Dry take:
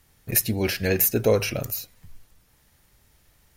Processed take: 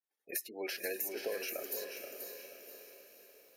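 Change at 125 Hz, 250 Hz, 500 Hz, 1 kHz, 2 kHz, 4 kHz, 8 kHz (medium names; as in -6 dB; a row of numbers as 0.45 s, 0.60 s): under -40 dB, -20.5 dB, -15.0 dB, -14.0 dB, -11.5 dB, -12.0 dB, -14.5 dB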